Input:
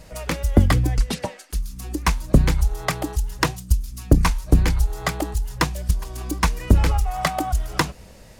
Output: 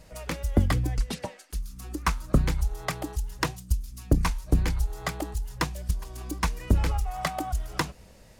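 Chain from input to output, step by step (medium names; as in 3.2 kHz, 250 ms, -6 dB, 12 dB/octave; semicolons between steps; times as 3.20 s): 1.65–2.39 s: peaking EQ 1.3 kHz +4.5 dB -> +13 dB 0.39 oct; trim -7 dB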